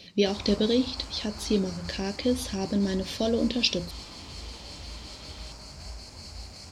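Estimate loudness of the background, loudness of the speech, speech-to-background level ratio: -41.5 LUFS, -27.5 LUFS, 14.0 dB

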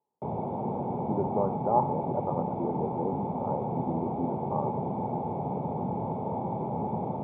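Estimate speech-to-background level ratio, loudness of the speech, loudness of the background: -0.5 dB, -33.0 LUFS, -32.5 LUFS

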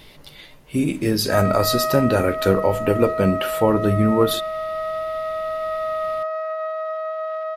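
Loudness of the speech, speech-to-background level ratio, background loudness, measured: -20.5 LUFS, 5.0 dB, -25.5 LUFS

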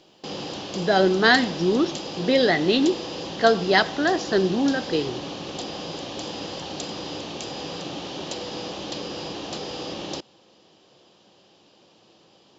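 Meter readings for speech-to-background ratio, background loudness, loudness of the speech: 11.0 dB, -32.5 LUFS, -21.5 LUFS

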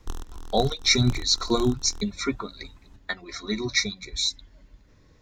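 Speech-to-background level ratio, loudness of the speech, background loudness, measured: 17.5 dB, -25.0 LUFS, -42.5 LUFS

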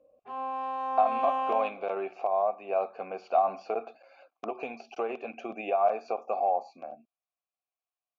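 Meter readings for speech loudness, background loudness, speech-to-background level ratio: -30.5 LUFS, -32.5 LUFS, 2.0 dB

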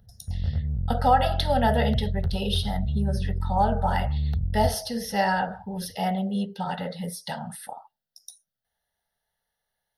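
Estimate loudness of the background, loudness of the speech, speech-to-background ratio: -29.5 LUFS, -27.0 LUFS, 2.5 dB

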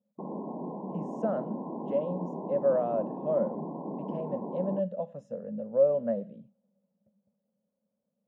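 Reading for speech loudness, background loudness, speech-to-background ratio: -31.0 LUFS, -38.0 LUFS, 7.0 dB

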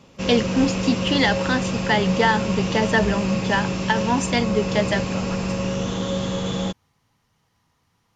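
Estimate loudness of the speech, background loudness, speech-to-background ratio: -22.5 LUFS, -25.0 LUFS, 2.5 dB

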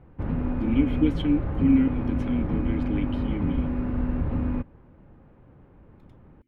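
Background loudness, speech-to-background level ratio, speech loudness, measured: -28.5 LUFS, 1.5 dB, -27.0 LUFS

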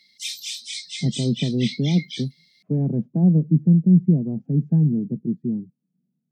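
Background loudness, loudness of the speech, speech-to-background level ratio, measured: -31.5 LUFS, -21.0 LUFS, 10.5 dB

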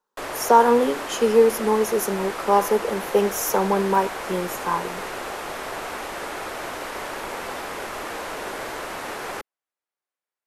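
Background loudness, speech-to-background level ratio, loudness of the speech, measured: -31.5 LUFS, 10.5 dB, -21.0 LUFS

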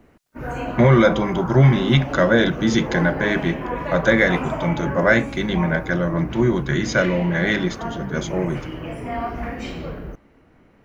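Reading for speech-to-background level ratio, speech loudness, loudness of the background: 10.0 dB, -19.5 LUFS, -29.5 LUFS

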